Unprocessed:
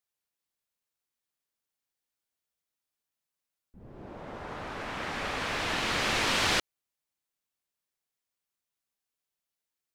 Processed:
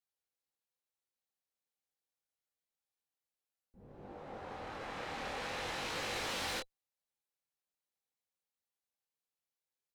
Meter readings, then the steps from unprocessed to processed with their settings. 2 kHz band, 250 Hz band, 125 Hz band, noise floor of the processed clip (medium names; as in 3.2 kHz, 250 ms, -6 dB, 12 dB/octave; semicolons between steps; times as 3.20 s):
-11.0 dB, -10.5 dB, -10.5 dB, under -85 dBFS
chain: small resonant body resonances 510/790/4000 Hz, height 8 dB, ringing for 40 ms; valve stage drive 30 dB, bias 0.5; chorus 0.5 Hz, delay 20 ms, depth 6.8 ms; trim -2.5 dB